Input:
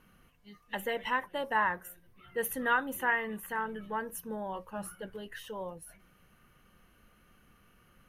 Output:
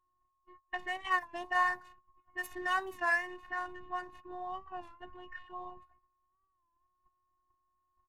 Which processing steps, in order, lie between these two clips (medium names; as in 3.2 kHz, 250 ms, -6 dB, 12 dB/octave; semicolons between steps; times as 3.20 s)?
median filter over 9 samples; level-controlled noise filter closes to 1.2 kHz, open at -28 dBFS; whistle 1 kHz -56 dBFS; comb 1.1 ms, depth 85%; gate -49 dBFS, range -22 dB; robot voice 362 Hz; warped record 33 1/3 rpm, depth 100 cents; trim -1.5 dB